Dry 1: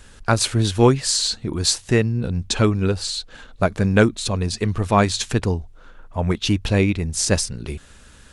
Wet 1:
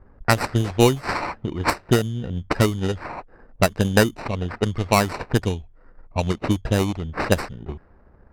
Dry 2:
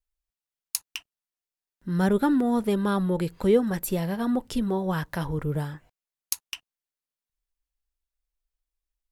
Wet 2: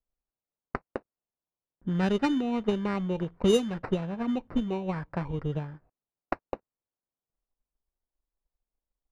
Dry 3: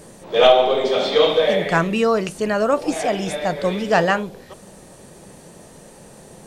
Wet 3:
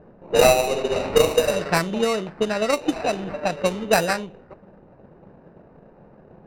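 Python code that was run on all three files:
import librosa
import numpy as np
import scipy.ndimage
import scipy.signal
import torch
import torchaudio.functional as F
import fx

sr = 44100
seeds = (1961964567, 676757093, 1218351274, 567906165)

y = fx.transient(x, sr, attack_db=8, sustain_db=0)
y = fx.sample_hold(y, sr, seeds[0], rate_hz=3300.0, jitter_pct=0)
y = fx.env_lowpass(y, sr, base_hz=900.0, full_db=-9.0)
y = y * 10.0 ** (-5.5 / 20.0)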